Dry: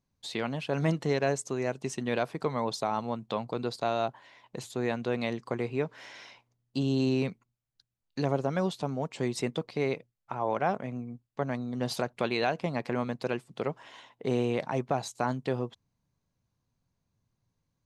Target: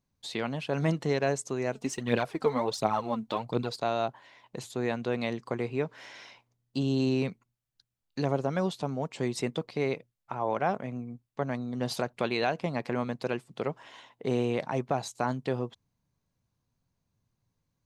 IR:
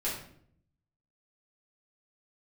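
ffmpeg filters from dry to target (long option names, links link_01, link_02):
-filter_complex "[0:a]asplit=3[link_01][link_02][link_03];[link_01]afade=type=out:start_time=1.73:duration=0.02[link_04];[link_02]aphaser=in_gain=1:out_gain=1:delay=4.8:decay=0.59:speed=1.4:type=triangular,afade=type=in:start_time=1.73:duration=0.02,afade=type=out:start_time=3.75:duration=0.02[link_05];[link_03]afade=type=in:start_time=3.75:duration=0.02[link_06];[link_04][link_05][link_06]amix=inputs=3:normalize=0"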